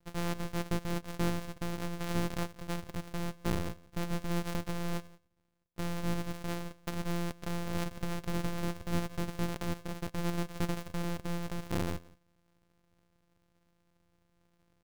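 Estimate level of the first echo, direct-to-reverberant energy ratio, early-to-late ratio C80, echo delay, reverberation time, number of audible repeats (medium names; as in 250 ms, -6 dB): -22.5 dB, no reverb, no reverb, 176 ms, no reverb, 1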